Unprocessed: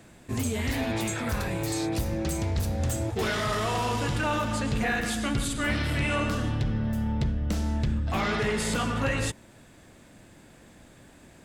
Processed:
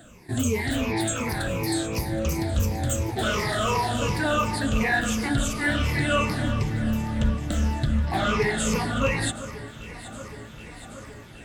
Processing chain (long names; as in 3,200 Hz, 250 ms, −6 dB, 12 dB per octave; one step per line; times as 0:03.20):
rippled gain that drifts along the octave scale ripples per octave 0.82, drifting −2.8 Hz, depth 16 dB
delay that swaps between a low-pass and a high-pass 386 ms, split 1,800 Hz, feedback 84%, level −14 dB